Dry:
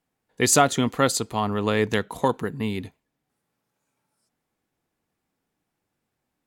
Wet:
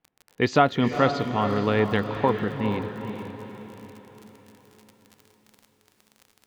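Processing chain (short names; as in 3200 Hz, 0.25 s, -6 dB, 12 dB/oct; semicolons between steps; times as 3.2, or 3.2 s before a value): Bessel low-pass 2800 Hz, order 8; crackle 41/s -36 dBFS; diffused feedback echo 0.456 s, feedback 48%, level -8 dB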